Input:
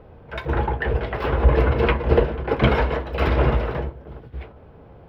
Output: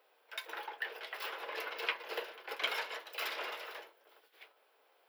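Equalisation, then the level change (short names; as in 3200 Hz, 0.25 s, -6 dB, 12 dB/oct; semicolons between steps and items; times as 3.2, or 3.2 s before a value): HPF 370 Hz 24 dB/oct; differentiator; high shelf 4100 Hz +6.5 dB; 0.0 dB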